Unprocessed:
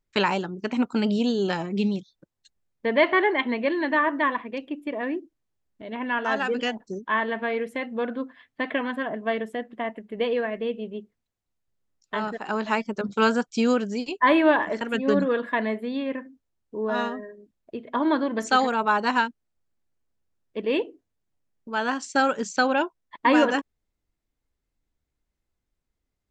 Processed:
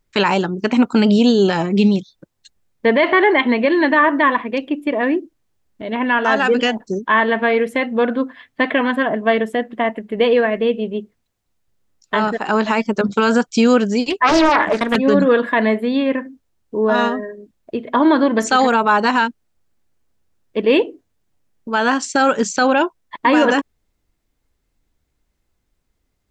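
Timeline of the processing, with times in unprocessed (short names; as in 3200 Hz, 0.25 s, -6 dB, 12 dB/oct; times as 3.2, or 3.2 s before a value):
14.1–14.96 Doppler distortion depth 0.67 ms
whole clip: maximiser +15 dB; gain -4 dB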